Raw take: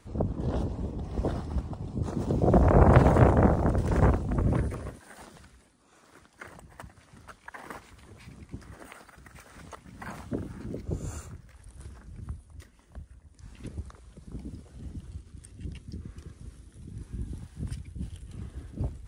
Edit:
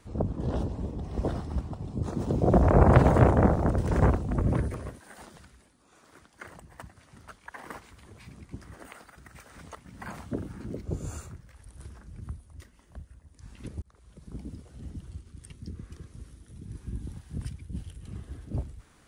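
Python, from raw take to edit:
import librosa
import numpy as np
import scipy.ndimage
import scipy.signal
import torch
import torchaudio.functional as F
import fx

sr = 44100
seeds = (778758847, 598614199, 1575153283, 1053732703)

y = fx.edit(x, sr, fx.fade_in_span(start_s=13.82, length_s=0.55, curve='qsin'),
    fx.cut(start_s=15.5, length_s=0.26), tone=tone)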